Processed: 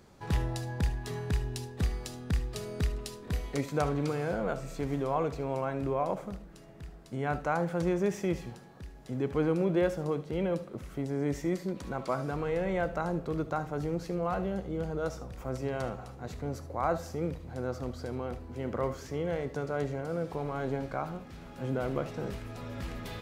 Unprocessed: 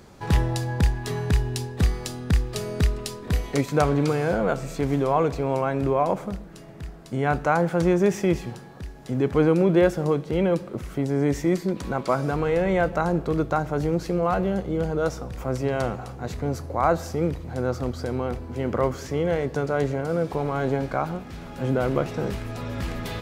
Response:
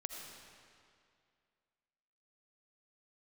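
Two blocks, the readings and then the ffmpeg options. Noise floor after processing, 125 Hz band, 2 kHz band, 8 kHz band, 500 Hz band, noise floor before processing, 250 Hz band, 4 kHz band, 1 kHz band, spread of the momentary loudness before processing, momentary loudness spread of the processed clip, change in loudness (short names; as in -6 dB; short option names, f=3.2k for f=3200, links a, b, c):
-49 dBFS, -8.5 dB, -8.5 dB, -8.5 dB, -8.5 dB, -41 dBFS, -8.5 dB, -8.5 dB, -8.5 dB, 10 LU, 10 LU, -8.5 dB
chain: -filter_complex "[1:a]atrim=start_sample=2205,atrim=end_sample=3528[a];[0:a][a]afir=irnorm=-1:irlink=0,volume=-5.5dB"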